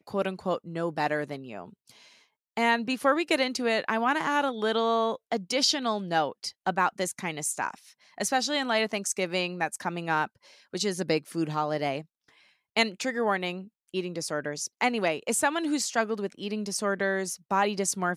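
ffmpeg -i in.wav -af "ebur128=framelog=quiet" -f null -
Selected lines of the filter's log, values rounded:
Integrated loudness:
  I:         -28.2 LUFS
  Threshold: -38.6 LUFS
Loudness range:
  LRA:         4.0 LU
  Threshold: -48.5 LUFS
  LRA low:   -30.4 LUFS
  LRA high:  -26.4 LUFS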